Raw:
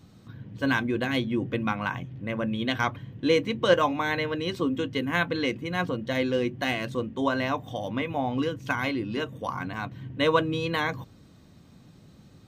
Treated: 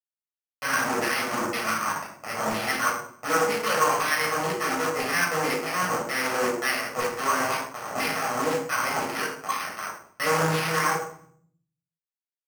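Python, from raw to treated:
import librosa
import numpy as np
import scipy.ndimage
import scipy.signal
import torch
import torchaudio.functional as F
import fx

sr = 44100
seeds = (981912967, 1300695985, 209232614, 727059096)

p1 = scipy.signal.sosfilt(scipy.signal.butter(2, 3000.0, 'lowpass', fs=sr, output='sos'), x)
p2 = fx.peak_eq(p1, sr, hz=700.0, db=-10.0, octaves=0.77)
p3 = fx.notch(p2, sr, hz=1500.0, q=21.0)
p4 = fx.comb_fb(p3, sr, f0_hz=160.0, decay_s=0.27, harmonics='odd', damping=0.0, mix_pct=70)
p5 = fx.quant_dither(p4, sr, seeds[0], bits=6, dither='none')
p6 = fx.fold_sine(p5, sr, drive_db=14, ceiling_db=-18.0)
p7 = p5 + (p6 * 10.0 ** (-8.5 / 20.0))
p8 = fx.filter_lfo_bandpass(p7, sr, shape='saw_down', hz=2.0, low_hz=850.0, high_hz=2100.0, q=1.1)
p9 = p8 + fx.echo_feedback(p8, sr, ms=106, feedback_pct=37, wet_db=-22, dry=0)
p10 = fx.room_shoebox(p9, sr, seeds[1], volume_m3=730.0, walls='furnished', distance_m=6.4)
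p11 = np.repeat(scipy.signal.resample_poly(p10, 1, 6), 6)[:len(p10)]
p12 = fx.doppler_dist(p11, sr, depth_ms=0.22)
y = p12 * 10.0 ** (1.5 / 20.0)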